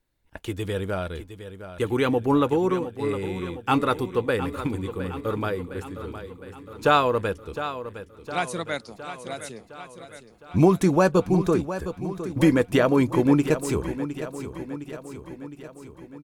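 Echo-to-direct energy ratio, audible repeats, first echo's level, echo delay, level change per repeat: -9.5 dB, 6, -11.5 dB, 711 ms, -4.5 dB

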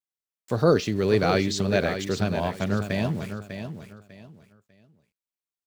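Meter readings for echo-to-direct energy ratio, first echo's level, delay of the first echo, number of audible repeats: -8.5 dB, -9.0 dB, 598 ms, 3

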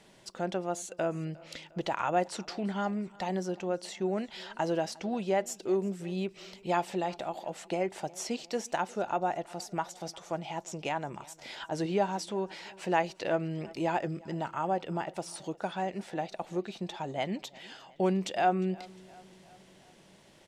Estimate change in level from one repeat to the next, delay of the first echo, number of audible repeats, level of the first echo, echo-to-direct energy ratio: -5.0 dB, 355 ms, 3, -23.0 dB, -21.5 dB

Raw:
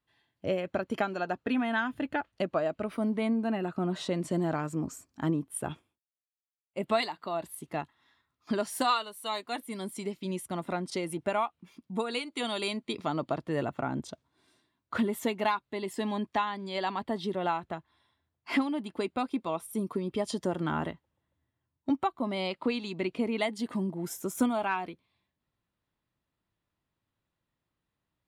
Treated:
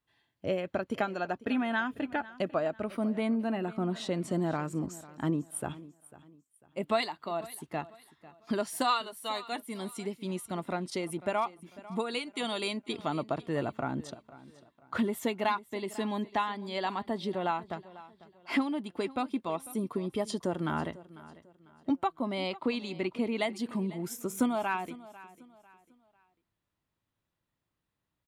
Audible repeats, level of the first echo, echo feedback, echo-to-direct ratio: 2, -18.5 dB, 34%, -18.0 dB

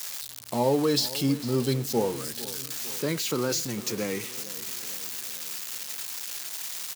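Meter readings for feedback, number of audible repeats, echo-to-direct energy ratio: 56%, 4, -15.5 dB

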